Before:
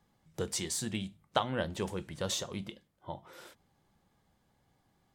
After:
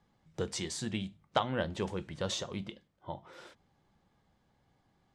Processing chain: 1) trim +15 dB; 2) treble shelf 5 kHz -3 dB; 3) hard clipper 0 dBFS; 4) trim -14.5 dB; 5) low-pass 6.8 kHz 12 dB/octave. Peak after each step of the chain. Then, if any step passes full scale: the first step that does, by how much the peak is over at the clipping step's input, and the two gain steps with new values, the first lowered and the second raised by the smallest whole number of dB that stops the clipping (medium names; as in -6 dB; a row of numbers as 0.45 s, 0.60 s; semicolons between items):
+4.0 dBFS, +4.0 dBFS, 0.0 dBFS, -14.5 dBFS, -14.5 dBFS; step 1, 4.0 dB; step 1 +11 dB, step 4 -10.5 dB